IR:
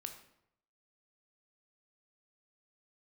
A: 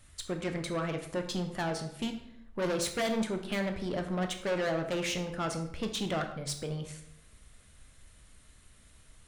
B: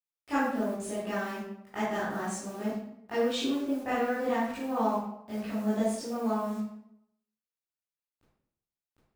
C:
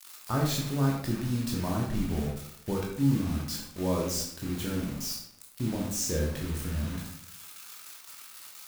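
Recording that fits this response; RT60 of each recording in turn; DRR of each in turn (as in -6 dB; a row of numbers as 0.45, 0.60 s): A; 0.75, 0.75, 0.75 s; 5.0, -12.0, -2.5 dB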